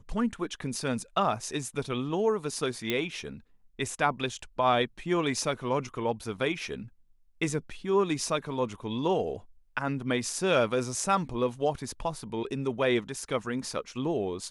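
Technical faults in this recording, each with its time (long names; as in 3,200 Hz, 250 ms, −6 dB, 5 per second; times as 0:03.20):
0:02.90: click −13 dBFS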